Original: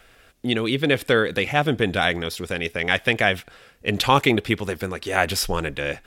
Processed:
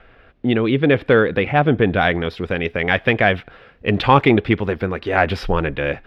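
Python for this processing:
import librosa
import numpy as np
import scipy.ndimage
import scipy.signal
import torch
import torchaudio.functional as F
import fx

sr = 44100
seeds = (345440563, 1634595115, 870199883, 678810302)

y = fx.high_shelf(x, sr, hz=5200.0, db=fx.steps((0.0, -11.5), (1.99, -2.0)))
y = 10.0 ** (-5.0 / 20.0) * np.tanh(y / 10.0 ** (-5.0 / 20.0))
y = fx.air_absorb(y, sr, metres=360.0)
y = y * 10.0 ** (7.0 / 20.0)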